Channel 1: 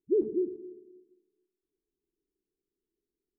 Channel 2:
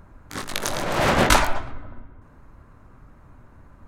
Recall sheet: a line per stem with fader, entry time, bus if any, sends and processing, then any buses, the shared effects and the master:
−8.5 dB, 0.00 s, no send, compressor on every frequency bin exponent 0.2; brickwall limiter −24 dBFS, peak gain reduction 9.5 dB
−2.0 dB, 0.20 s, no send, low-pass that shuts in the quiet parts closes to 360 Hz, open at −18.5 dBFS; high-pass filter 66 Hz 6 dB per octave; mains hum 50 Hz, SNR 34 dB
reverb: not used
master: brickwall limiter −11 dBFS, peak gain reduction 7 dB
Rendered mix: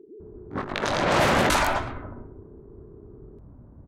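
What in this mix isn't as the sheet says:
stem 1 −8.5 dB → −15.5 dB
stem 2 −2.0 dB → +4.5 dB

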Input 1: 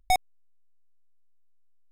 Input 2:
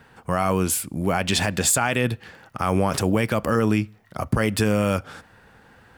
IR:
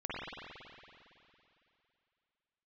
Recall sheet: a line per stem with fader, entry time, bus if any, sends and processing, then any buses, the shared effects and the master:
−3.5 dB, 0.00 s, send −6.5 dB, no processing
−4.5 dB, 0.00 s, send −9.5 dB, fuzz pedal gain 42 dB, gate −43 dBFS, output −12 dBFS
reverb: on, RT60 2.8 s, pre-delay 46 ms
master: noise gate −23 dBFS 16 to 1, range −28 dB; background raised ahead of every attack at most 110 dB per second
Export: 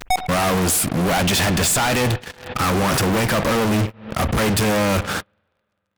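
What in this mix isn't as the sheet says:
stem 1 −3.5 dB → +3.0 dB
reverb return −9.0 dB

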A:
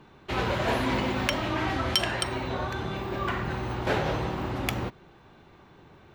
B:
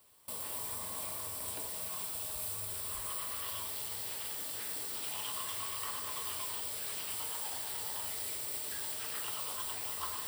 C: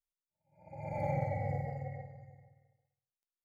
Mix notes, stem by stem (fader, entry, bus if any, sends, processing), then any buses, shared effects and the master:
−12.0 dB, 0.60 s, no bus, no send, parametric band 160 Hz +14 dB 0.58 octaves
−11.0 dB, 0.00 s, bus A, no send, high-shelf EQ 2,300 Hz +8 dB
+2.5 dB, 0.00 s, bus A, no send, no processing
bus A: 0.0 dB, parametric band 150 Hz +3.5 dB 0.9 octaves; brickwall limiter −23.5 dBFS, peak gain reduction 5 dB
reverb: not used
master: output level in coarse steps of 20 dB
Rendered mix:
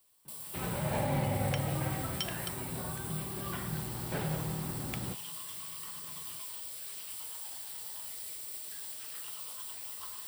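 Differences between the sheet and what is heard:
stem A: entry 0.60 s → 0.25 s
master: missing output level in coarse steps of 20 dB

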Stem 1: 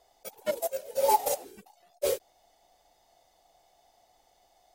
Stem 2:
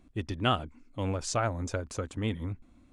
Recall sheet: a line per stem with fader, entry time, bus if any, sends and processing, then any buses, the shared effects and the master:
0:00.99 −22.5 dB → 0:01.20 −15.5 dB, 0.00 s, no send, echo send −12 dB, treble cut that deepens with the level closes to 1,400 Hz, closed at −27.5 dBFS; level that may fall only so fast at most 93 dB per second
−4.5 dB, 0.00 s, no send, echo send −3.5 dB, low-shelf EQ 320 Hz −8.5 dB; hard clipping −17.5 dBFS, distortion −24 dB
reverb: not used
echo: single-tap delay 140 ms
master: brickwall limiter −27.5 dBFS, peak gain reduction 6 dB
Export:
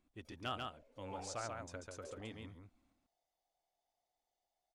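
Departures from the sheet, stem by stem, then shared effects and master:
stem 1 −22.5 dB → −31.5 dB
stem 2 −4.5 dB → −13.0 dB

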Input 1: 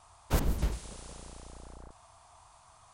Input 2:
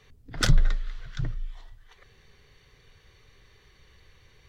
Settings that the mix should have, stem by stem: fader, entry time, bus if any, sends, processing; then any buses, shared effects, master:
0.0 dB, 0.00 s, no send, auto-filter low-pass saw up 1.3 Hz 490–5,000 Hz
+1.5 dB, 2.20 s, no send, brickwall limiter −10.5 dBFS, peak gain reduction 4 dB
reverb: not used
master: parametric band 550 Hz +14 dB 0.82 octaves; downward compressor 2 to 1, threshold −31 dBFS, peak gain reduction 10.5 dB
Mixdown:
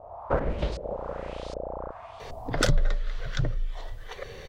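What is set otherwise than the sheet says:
stem 1 0.0 dB → +9.0 dB
stem 2 +1.5 dB → +13.0 dB

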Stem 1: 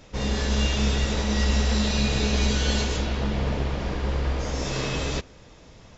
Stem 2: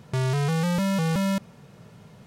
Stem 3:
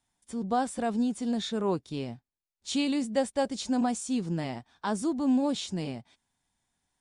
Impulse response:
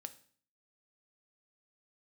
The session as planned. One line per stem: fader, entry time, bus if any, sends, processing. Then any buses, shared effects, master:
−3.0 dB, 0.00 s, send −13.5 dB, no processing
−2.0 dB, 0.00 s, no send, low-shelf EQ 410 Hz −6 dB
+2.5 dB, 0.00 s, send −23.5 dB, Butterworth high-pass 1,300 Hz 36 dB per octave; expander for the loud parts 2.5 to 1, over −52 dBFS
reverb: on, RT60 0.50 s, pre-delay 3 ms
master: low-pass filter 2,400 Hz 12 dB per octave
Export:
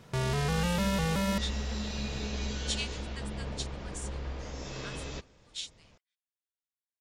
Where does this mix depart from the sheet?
stem 1 −3.0 dB → −13.0 dB
stem 3: send off
master: missing low-pass filter 2,400 Hz 12 dB per octave

